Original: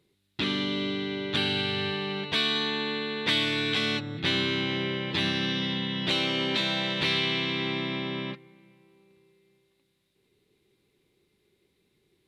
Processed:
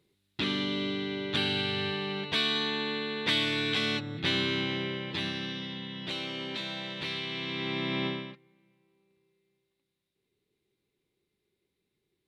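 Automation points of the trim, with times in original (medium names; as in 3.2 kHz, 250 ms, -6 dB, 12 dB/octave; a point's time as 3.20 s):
4.60 s -2 dB
5.69 s -9 dB
7.27 s -9 dB
8.06 s +2 dB
8.32 s -10.5 dB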